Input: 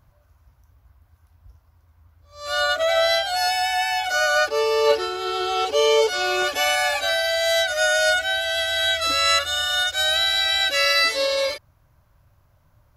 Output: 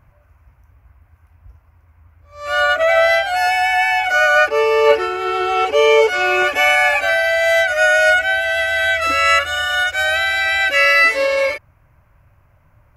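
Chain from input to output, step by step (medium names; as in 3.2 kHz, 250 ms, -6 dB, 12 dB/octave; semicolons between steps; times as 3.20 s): resonant high shelf 3 kHz -7 dB, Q 3; trim +5.5 dB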